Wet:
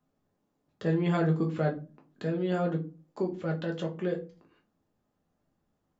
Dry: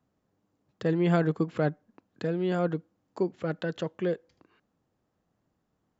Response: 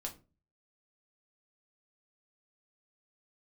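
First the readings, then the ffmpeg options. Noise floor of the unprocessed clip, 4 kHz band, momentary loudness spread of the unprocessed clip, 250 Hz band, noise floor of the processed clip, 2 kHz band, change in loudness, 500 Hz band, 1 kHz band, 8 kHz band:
-78 dBFS, -1.5 dB, 9 LU, -1.0 dB, -78 dBFS, -2.0 dB, -1.0 dB, -2.0 dB, -1.0 dB, no reading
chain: -filter_complex "[1:a]atrim=start_sample=2205[s0];[0:a][s0]afir=irnorm=-1:irlink=0"

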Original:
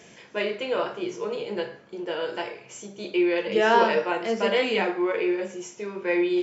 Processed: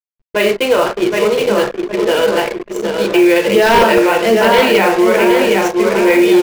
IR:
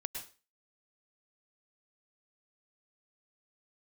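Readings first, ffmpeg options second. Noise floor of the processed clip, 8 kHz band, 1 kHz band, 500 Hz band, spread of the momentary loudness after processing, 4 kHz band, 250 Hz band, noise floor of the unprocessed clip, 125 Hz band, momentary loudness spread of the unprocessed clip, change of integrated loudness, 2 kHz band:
-57 dBFS, no reading, +12.5 dB, +14.0 dB, 8 LU, +13.5 dB, +14.0 dB, -51 dBFS, +15.5 dB, 15 LU, +13.5 dB, +13.0 dB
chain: -filter_complex "[0:a]asplit=2[s0][s1];[s1]asoftclip=type=tanh:threshold=0.119,volume=0.282[s2];[s0][s2]amix=inputs=2:normalize=0,lowpass=6200,asplit=2[s3][s4];[s4]adelay=767,lowpass=f=4100:p=1,volume=0.562,asplit=2[s5][s6];[s6]adelay=767,lowpass=f=4100:p=1,volume=0.51,asplit=2[s7][s8];[s8]adelay=767,lowpass=f=4100:p=1,volume=0.51,asplit=2[s9][s10];[s10]adelay=767,lowpass=f=4100:p=1,volume=0.51,asplit=2[s11][s12];[s12]adelay=767,lowpass=f=4100:p=1,volume=0.51,asplit=2[s13][s14];[s14]adelay=767,lowpass=f=4100:p=1,volume=0.51[s15];[s5][s7][s9][s11][s13][s15]amix=inputs=6:normalize=0[s16];[s3][s16]amix=inputs=2:normalize=0,acrusher=bits=5:mix=0:aa=0.000001,aeval=exprs='0.251*(abs(mod(val(0)/0.251+3,4)-2)-1)':c=same,anlmdn=15.8,alimiter=level_in=5.96:limit=0.891:release=50:level=0:latency=1,volume=0.794"

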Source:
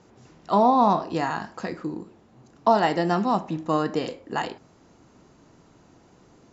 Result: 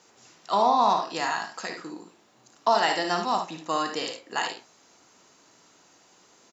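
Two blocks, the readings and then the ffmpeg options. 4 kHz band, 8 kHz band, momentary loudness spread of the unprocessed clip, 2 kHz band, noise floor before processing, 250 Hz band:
+6.5 dB, no reading, 15 LU, +3.0 dB, -57 dBFS, -10.0 dB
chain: -af "highpass=f=900:p=1,highshelf=f=3100:g=10,aecho=1:1:56|73:0.398|0.355"

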